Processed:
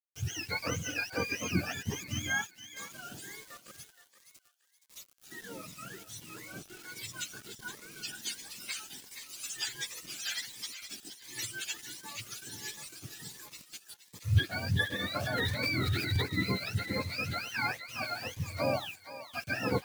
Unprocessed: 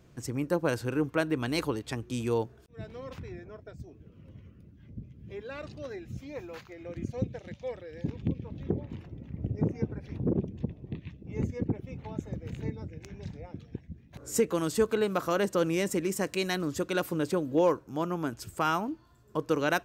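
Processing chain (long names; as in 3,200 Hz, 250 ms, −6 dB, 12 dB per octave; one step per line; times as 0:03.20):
frequency axis turned over on the octave scale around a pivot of 870 Hz
bit reduction 8 bits
0:15.17–0:16.22: transient designer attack −4 dB, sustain +8 dB
on a send: feedback echo with a high-pass in the loop 471 ms, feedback 31%, high-pass 870 Hz, level −10 dB
on the sum: phaser whose notches keep moving one way rising 1.4 Hz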